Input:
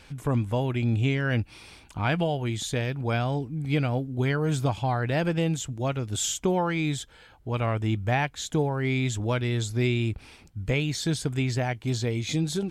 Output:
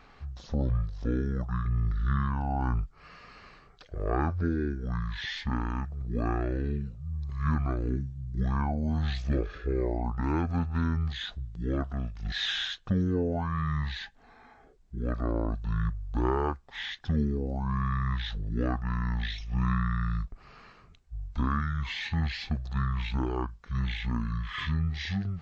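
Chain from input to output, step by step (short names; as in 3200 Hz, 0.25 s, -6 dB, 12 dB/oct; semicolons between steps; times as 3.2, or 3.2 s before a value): speed mistake 15 ips tape played at 7.5 ips; gain -3 dB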